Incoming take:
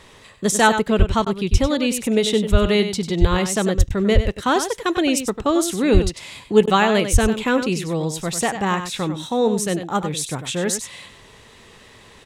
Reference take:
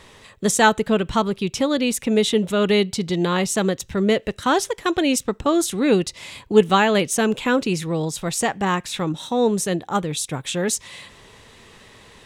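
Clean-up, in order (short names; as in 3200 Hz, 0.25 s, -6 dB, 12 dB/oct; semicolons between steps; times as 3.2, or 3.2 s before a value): de-plosive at 0.98/1.51/2.51/3.2/3.77/4.14/5.93/7.12; interpolate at 1.25/3.89/6.66, 12 ms; inverse comb 96 ms -9.5 dB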